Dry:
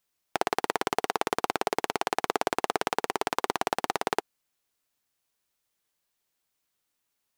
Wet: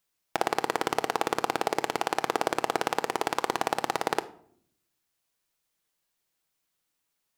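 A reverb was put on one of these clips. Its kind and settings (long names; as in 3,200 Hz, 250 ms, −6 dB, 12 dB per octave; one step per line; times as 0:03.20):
rectangular room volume 1,000 cubic metres, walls furnished, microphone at 0.65 metres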